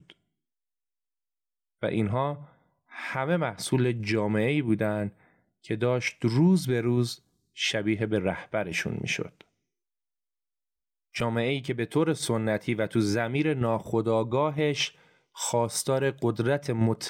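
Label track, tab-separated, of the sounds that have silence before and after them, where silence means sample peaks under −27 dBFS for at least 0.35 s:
1.830000	2.330000	sound
2.990000	5.070000	sound
5.710000	7.120000	sound
7.600000	9.250000	sound
11.160000	14.870000	sound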